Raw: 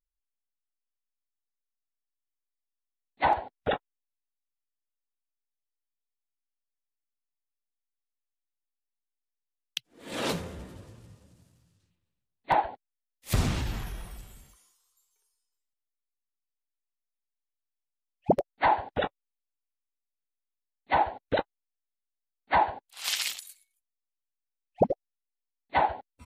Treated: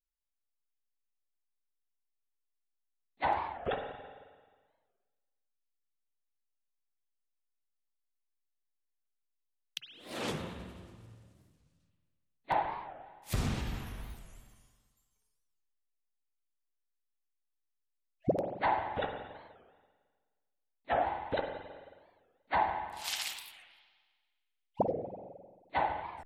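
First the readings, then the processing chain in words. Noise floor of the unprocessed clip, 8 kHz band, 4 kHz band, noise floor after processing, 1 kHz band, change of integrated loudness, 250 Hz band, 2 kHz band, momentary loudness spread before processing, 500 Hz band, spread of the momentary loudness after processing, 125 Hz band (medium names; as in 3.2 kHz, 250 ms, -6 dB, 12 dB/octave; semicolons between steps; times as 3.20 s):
under -85 dBFS, -7.0 dB, -6.5 dB, -82 dBFS, -5.5 dB, -6.0 dB, -5.0 dB, -5.5 dB, 15 LU, -5.0 dB, 19 LU, -5.5 dB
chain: spring tank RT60 1.5 s, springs 44/53 ms, chirp 60 ms, DRR 4 dB; warped record 45 rpm, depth 250 cents; trim -7 dB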